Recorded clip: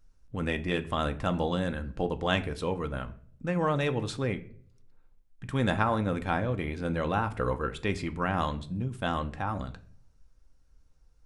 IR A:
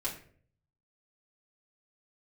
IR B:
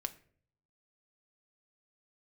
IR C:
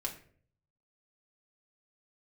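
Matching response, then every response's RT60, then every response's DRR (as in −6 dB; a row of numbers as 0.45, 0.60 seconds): B; 0.50, 0.55, 0.50 seconds; −7.0, 8.0, −1.0 decibels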